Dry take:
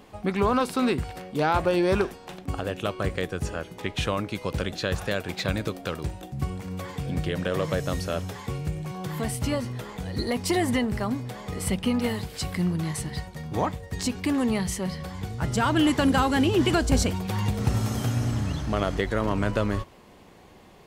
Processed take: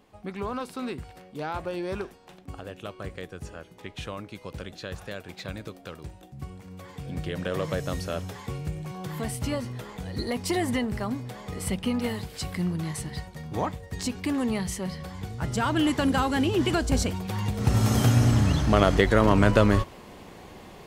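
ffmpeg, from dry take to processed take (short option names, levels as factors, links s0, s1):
-af "volume=2,afade=t=in:st=6.78:d=0.73:silence=0.446684,afade=t=in:st=17.55:d=0.41:silence=0.375837"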